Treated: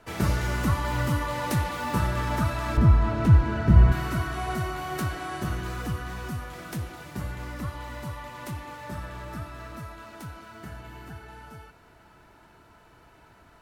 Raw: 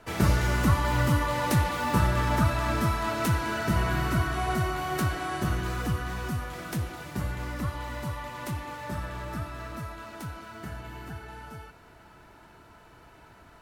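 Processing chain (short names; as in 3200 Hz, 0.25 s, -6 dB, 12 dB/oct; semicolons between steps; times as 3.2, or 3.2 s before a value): 2.77–3.92 RIAA curve playback; gain -2 dB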